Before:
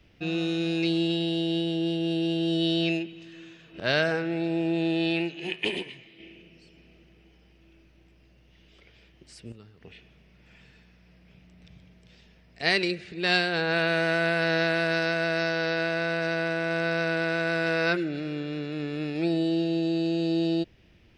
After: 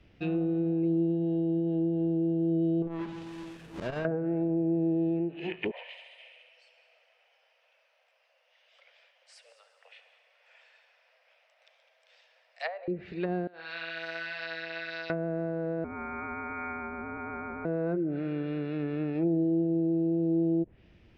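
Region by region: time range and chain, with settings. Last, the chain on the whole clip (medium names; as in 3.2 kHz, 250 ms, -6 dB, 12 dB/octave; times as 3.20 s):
2.82–4.05 s: square wave that keeps the level + compression 2.5:1, threshold -33 dBFS + transformer saturation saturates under 240 Hz
5.71–12.88 s: steep high-pass 510 Hz 96 dB/octave + multi-head delay 69 ms, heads all three, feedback 59%, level -17 dB
13.47–15.10 s: band-pass filter 5.1 kHz, Q 1.1 + flutter echo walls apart 10.4 m, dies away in 0.79 s
15.84–17.65 s: steep high-pass 470 Hz 72 dB/octave + frequency inversion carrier 2.9 kHz
whole clip: low-pass that closes with the level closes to 500 Hz, closed at -23.5 dBFS; treble shelf 3.4 kHz -8.5 dB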